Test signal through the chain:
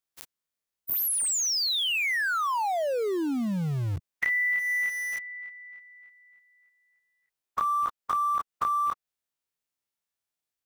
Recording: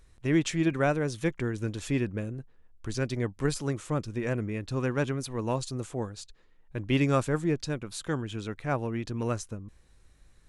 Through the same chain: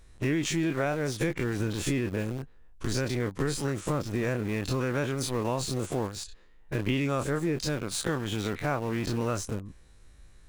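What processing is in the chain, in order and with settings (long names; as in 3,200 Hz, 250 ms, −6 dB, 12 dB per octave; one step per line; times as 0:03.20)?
every bin's largest magnitude spread in time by 60 ms
in parallel at −4 dB: centre clipping without the shift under −31 dBFS
on the sum: downward compressor, threshold −25 dBFS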